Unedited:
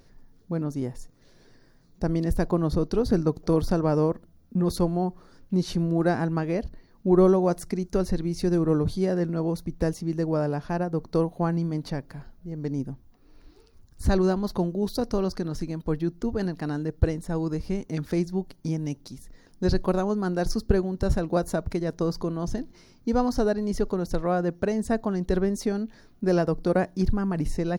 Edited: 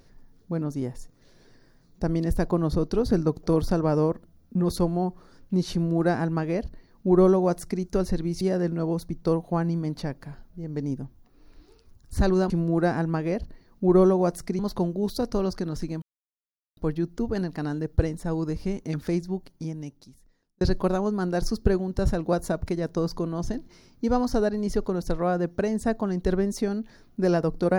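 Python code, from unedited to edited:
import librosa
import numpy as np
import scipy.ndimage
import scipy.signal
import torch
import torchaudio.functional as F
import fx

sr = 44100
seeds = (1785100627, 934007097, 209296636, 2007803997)

y = fx.edit(x, sr, fx.duplicate(start_s=5.73, length_s=2.09, to_s=14.38),
    fx.cut(start_s=8.41, length_s=0.57),
    fx.cut(start_s=9.8, length_s=1.31),
    fx.insert_silence(at_s=15.81, length_s=0.75),
    fx.fade_out_span(start_s=18.05, length_s=1.6), tone=tone)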